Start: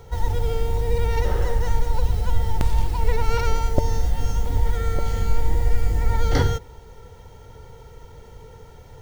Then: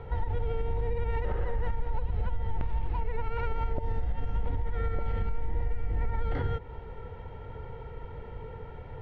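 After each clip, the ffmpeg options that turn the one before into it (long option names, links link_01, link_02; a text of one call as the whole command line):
ffmpeg -i in.wav -af "lowpass=frequency=2700:width=0.5412,lowpass=frequency=2700:width=1.3066,acompressor=threshold=-18dB:ratio=6,alimiter=limit=-23dB:level=0:latency=1:release=191,volume=2dB" out.wav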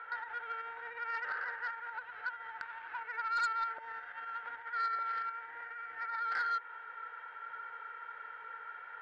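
ffmpeg -i in.wav -af "highpass=frequency=1500:width_type=q:width=8.8,aemphasis=mode=reproduction:type=75fm,aeval=exprs='0.112*(cos(1*acos(clip(val(0)/0.112,-1,1)))-cos(1*PI/2))+0.02*(cos(5*acos(clip(val(0)/0.112,-1,1)))-cos(5*PI/2))':channel_layout=same,volume=-5.5dB" out.wav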